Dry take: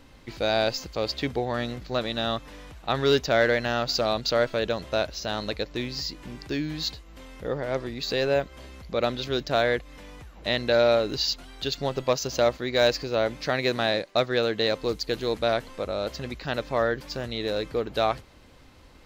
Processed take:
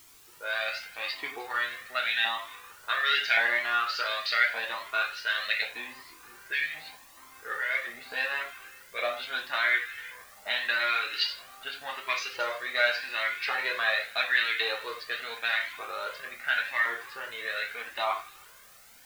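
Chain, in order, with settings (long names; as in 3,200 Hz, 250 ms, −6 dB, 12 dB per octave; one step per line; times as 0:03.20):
fade in at the beginning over 0.99 s
auto-filter band-pass saw up 0.89 Hz 880–2,000 Hz
reverb whose tail is shaped and stops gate 130 ms falling, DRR −0.5 dB
dynamic equaliser 2,000 Hz, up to +7 dB, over −46 dBFS, Q 0.75
on a send: delay with a high-pass on its return 154 ms, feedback 48%, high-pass 1,600 Hz, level −18.5 dB
on the sum: low-pass that shuts in the quiet parts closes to 1,100 Hz, open at −26 dBFS
in parallel at +2.5 dB: downward compressor 5 to 1, threshold −40 dBFS, peak gain reduction 19.5 dB
on the sum: meter weighting curve D
bit-depth reduction 8 bits, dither triangular
flanger whose copies keep moving one way rising 0.83 Hz
level −2.5 dB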